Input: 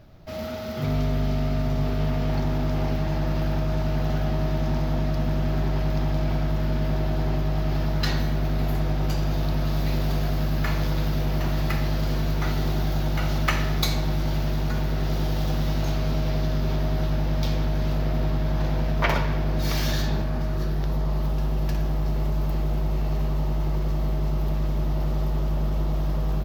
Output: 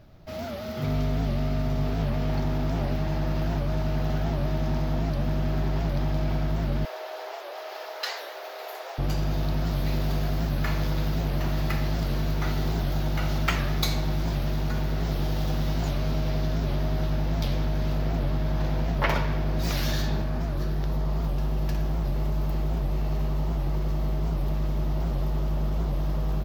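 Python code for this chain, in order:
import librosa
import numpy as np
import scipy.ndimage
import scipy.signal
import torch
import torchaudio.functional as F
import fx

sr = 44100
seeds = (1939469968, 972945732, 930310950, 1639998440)

y = fx.steep_highpass(x, sr, hz=440.0, slope=48, at=(6.85, 8.99))
y = fx.record_warp(y, sr, rpm=78.0, depth_cents=160.0)
y = y * 10.0 ** (-2.0 / 20.0)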